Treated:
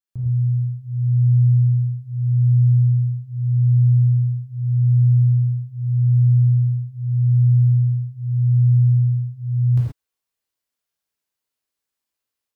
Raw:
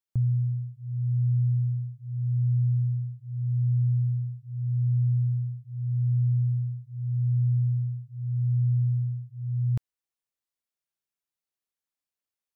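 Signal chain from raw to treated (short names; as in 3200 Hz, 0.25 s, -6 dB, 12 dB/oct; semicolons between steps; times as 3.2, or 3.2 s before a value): non-linear reverb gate 0.15 s flat, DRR -6 dB; AGC gain up to 6 dB; gain -5.5 dB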